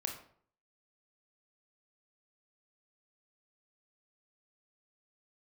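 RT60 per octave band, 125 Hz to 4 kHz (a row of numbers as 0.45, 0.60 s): 0.65, 0.60, 0.60, 0.55, 0.45, 0.40 s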